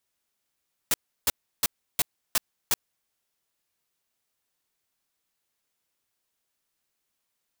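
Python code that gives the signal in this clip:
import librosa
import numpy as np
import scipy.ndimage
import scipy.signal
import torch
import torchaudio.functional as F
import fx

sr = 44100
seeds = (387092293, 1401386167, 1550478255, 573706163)

y = fx.noise_burst(sr, seeds[0], colour='white', on_s=0.03, off_s=0.33, bursts=6, level_db=-22.0)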